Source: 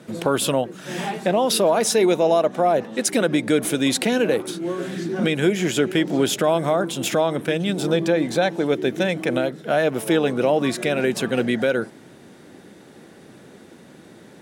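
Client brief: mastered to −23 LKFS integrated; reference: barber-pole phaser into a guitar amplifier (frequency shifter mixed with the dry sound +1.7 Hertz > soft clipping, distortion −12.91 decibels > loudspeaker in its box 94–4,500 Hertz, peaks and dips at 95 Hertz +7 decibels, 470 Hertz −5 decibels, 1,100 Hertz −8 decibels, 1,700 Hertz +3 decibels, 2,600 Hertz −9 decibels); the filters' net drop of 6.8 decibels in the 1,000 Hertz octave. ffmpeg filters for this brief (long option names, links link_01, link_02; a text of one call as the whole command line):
ffmpeg -i in.wav -filter_complex "[0:a]equalizer=frequency=1000:width_type=o:gain=-8.5,asplit=2[link_01][link_02];[link_02]afreqshift=1.7[link_03];[link_01][link_03]amix=inputs=2:normalize=1,asoftclip=threshold=-21dB,highpass=94,equalizer=frequency=95:width_type=q:width=4:gain=7,equalizer=frequency=470:width_type=q:width=4:gain=-5,equalizer=frequency=1100:width_type=q:width=4:gain=-8,equalizer=frequency=1700:width_type=q:width=4:gain=3,equalizer=frequency=2600:width_type=q:width=4:gain=-9,lowpass=frequency=4500:width=0.5412,lowpass=frequency=4500:width=1.3066,volume=7dB" out.wav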